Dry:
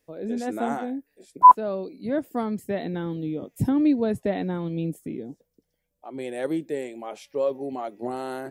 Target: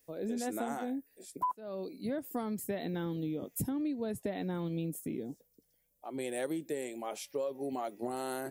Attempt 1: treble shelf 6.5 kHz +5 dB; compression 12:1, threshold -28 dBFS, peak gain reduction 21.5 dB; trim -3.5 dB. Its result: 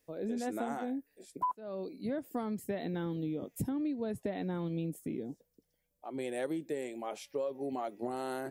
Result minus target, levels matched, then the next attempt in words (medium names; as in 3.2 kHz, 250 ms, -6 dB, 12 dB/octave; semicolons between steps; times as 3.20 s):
8 kHz band -6.5 dB
treble shelf 6.5 kHz +16 dB; compression 12:1, threshold -28 dBFS, peak gain reduction 21.5 dB; trim -3.5 dB